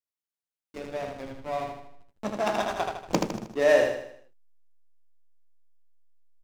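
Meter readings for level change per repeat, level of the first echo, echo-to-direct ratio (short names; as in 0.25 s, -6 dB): -6.5 dB, -4.0 dB, -3.0 dB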